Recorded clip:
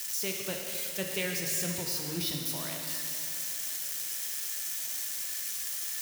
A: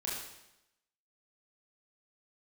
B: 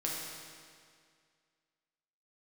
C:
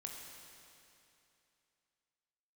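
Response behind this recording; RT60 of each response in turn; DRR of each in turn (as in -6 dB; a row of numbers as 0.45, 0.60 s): C; 0.90, 2.1, 2.8 s; -6.0, -4.0, 0.0 dB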